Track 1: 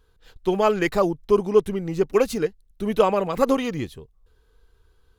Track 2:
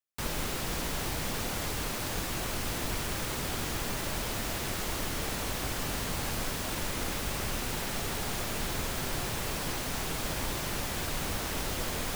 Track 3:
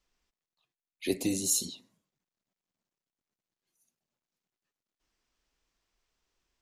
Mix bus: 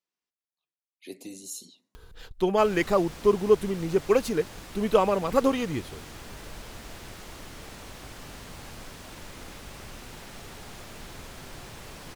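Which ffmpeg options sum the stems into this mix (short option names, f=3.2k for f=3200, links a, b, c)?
-filter_complex "[0:a]acompressor=mode=upward:threshold=-32dB:ratio=2.5,adelay=1950,volume=-2.5dB[a];[1:a]highshelf=f=12k:g=-10,adelay=2400,volume=-9dB[b];[2:a]highpass=170,volume=-11dB[c];[a][b][c]amix=inputs=3:normalize=0"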